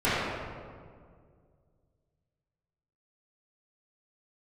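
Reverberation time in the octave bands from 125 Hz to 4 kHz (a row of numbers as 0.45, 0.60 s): 2.8, 2.5, 2.2, 1.8, 1.4, 1.1 s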